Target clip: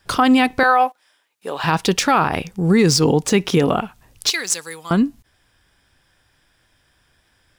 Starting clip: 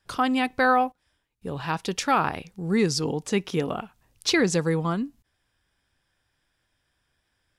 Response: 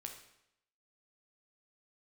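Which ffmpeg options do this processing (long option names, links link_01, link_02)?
-filter_complex "[0:a]asettb=1/sr,asplit=3[link_01][link_02][link_03];[link_01]atrim=end=0.634[link_04];[link_02]atrim=start=0.63:end=1.64,asetpts=PTS-STARTPTS,afade=type=in:duration=0.004:curve=qsin,afade=type=out:start_time=1.006:duration=0.004:curve=qsin,highpass=570[link_05];[link_03]atrim=start=1.636[link_06];[link_04][link_05]acrossfade=duration=0.004:curve1=hsin:curve2=qsin[link_07];[link_07][link_06]acrossfade=duration=0.004:curve1=qsin:curve2=hsin,asettb=1/sr,asplit=3[link_08][link_09][link_10];[link_08]atrim=end=2.284[link_11];[link_09]atrim=start=2.28:end=2.69,asetpts=PTS-STARTPTS,afade=type=in:duration=0.004:curve=qsin,afade=type=out:start_time=0.406:duration=0.004:curve=qsin,bandreject=frequency=4100:width=10[link_12];[link_10]atrim=start=2.686[link_13];[link_11][link_12]acrossfade=duration=0.004:curve1=hsin:curve2=qsin[link_14];[link_14][link_13]acrossfade=duration=0.004:curve1=qsin:curve2=hsin,asettb=1/sr,asplit=3[link_15][link_16][link_17];[link_15]atrim=end=4.304[link_18];[link_16]atrim=start=4.3:end=4.91,asetpts=PTS-STARTPTS,afade=type=in:duration=0.004:curve=qsin,afade=type=out:start_time=0.606:duration=0.004:curve=qsin,aderivative[link_19];[link_17]atrim=start=4.906[link_20];[link_18][link_19]acrossfade=duration=0.004:curve1=hsin:curve2=qsin[link_21];[link_21][link_20]acrossfade=duration=0.004:curve1=qsin:curve2=hsin,acrossover=split=3800[link_22][link_23];[link_23]acrusher=bits=3:mode=log:mix=0:aa=0.000001[link_24];[link_22][link_24]amix=inputs=2:normalize=0,alimiter=level_in=18dB:limit=-1dB:release=50:level=0:latency=1,volume=-5.5dB"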